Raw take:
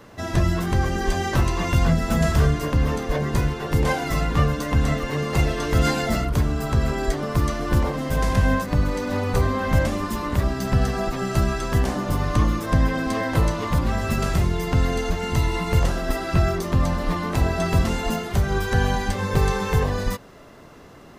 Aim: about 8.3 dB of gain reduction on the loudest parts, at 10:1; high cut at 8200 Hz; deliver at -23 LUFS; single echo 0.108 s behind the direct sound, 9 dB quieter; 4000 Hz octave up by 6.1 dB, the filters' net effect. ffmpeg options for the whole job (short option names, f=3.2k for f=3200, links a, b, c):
-af "lowpass=8.2k,equalizer=f=4k:t=o:g=8,acompressor=threshold=-22dB:ratio=10,aecho=1:1:108:0.355,volume=4dB"